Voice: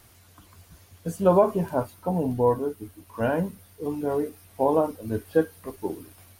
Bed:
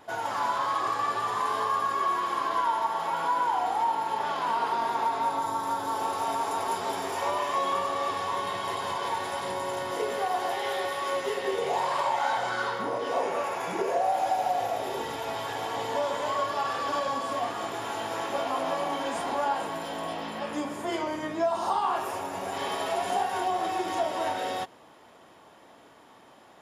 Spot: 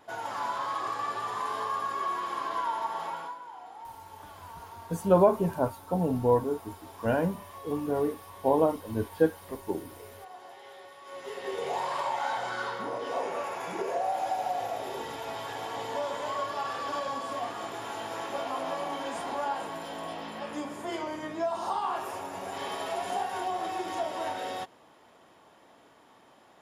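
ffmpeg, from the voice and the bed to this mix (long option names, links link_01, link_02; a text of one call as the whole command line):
ffmpeg -i stem1.wav -i stem2.wav -filter_complex "[0:a]adelay=3850,volume=-2dB[link_01];[1:a]volume=10dB,afade=type=out:start_time=3.03:duration=0.35:silence=0.199526,afade=type=in:start_time=11.04:duration=0.61:silence=0.188365[link_02];[link_01][link_02]amix=inputs=2:normalize=0" out.wav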